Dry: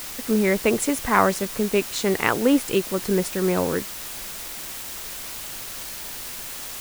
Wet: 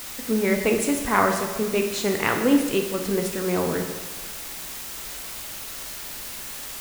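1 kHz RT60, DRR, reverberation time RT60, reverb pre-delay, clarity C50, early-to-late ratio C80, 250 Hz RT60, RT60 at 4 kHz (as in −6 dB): 1.3 s, 3.0 dB, 1.3 s, 4 ms, 6.0 dB, 8.0 dB, 1.3 s, 1.2 s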